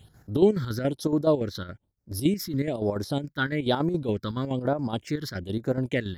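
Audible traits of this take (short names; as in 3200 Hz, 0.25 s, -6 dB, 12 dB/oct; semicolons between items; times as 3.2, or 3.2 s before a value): chopped level 7.1 Hz, depth 60%, duty 60%; phasing stages 6, 1.1 Hz, lowest notch 660–3100 Hz; MP3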